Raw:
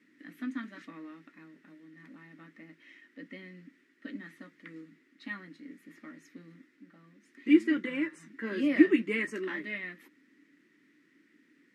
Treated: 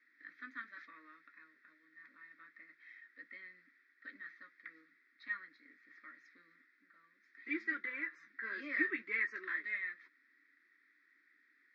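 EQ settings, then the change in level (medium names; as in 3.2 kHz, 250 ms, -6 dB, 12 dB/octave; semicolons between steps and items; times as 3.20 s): high-pass 1.1 kHz 12 dB/octave; distance through air 270 m; static phaser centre 2.9 kHz, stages 6; +3.5 dB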